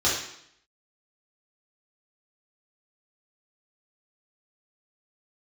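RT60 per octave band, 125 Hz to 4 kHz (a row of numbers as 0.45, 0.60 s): 0.70, 0.75, 0.70, 0.70, 0.70, 0.70 s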